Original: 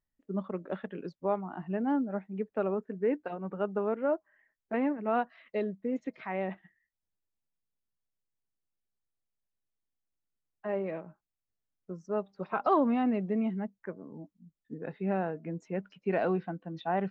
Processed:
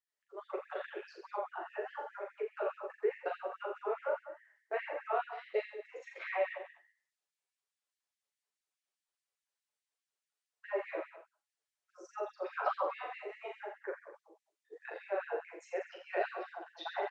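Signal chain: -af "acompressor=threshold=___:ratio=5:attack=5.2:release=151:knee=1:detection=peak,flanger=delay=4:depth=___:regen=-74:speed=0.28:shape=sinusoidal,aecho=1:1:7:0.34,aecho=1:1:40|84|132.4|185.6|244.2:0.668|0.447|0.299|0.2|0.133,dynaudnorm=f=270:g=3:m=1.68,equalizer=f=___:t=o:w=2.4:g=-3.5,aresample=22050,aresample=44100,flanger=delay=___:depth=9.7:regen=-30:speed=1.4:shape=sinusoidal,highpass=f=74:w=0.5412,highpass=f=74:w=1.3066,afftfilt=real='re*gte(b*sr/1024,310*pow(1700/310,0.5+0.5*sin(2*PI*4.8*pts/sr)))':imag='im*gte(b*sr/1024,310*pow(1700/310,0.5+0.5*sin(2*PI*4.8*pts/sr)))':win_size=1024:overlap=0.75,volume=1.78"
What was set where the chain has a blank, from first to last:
0.0316, 1.3, 150, 3.6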